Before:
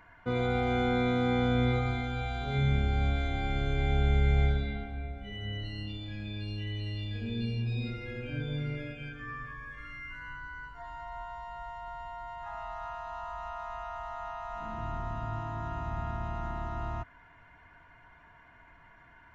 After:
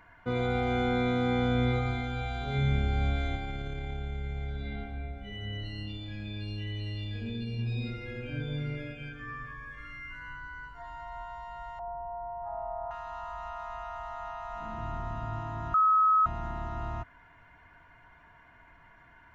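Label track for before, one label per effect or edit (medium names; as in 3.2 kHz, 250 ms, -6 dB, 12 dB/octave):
3.350000	7.590000	compression 10:1, threshold -31 dBFS
11.790000	12.910000	resonant low-pass 680 Hz, resonance Q 2.6
15.740000	16.260000	bleep 1.28 kHz -19.5 dBFS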